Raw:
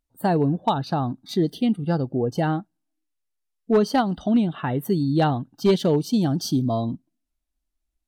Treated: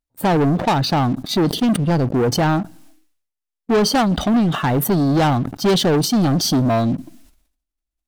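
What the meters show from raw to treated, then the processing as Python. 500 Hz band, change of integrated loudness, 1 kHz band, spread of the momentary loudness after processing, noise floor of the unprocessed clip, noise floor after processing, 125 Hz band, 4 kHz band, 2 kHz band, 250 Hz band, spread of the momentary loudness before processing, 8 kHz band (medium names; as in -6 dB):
+4.0 dB, +5.0 dB, +5.5 dB, 4 LU, -79 dBFS, -84 dBFS, +6.0 dB, +11.0 dB, +8.5 dB, +4.5 dB, 6 LU, +13.0 dB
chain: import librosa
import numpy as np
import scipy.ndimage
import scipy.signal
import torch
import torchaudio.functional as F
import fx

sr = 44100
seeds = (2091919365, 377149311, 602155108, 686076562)

y = fx.leveller(x, sr, passes=3)
y = fx.sustainer(y, sr, db_per_s=87.0)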